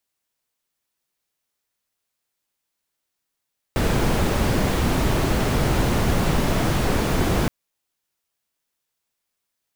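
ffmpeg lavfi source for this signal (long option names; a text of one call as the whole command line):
ffmpeg -f lavfi -i "anoisesrc=color=brown:amplitude=0.495:duration=3.72:sample_rate=44100:seed=1" out.wav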